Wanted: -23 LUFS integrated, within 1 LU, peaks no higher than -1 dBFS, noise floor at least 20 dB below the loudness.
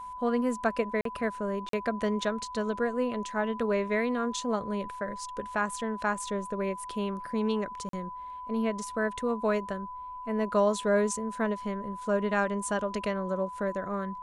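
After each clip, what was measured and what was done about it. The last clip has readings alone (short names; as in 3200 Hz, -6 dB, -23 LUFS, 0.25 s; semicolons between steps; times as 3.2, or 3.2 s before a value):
dropouts 3; longest dropout 43 ms; steady tone 1000 Hz; tone level -38 dBFS; loudness -30.5 LUFS; peak -14.0 dBFS; loudness target -23.0 LUFS
-> interpolate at 1.01/1.69/7.89, 43 ms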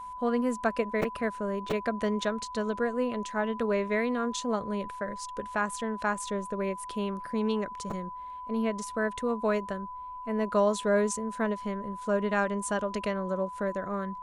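dropouts 0; steady tone 1000 Hz; tone level -38 dBFS
-> notch 1000 Hz, Q 30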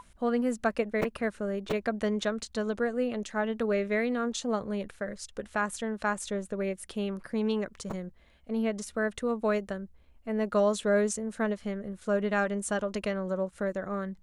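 steady tone none; loudness -31.0 LUFS; peak -14.5 dBFS; loudness target -23.0 LUFS
-> gain +8 dB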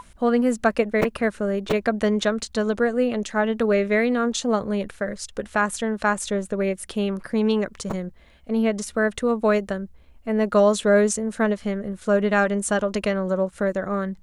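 loudness -23.0 LUFS; peak -6.5 dBFS; noise floor -51 dBFS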